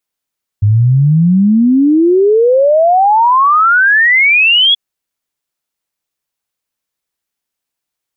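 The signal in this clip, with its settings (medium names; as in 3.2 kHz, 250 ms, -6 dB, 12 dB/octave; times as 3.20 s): log sweep 100 Hz -> 3.4 kHz 4.13 s -5.5 dBFS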